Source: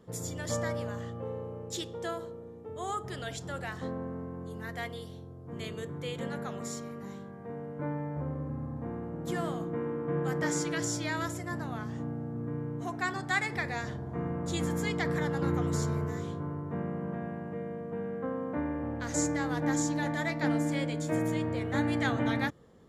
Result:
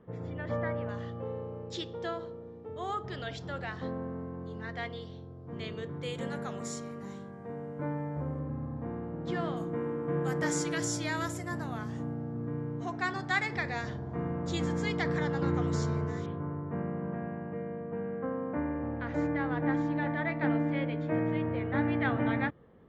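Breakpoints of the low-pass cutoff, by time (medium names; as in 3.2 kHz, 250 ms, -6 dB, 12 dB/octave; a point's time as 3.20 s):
low-pass 24 dB/octave
2.5 kHz
from 0.89 s 5 kHz
from 6.03 s 10 kHz
from 8.39 s 4.7 kHz
from 9.57 s 12 kHz
from 12.13 s 6.2 kHz
from 16.26 s 2.8 kHz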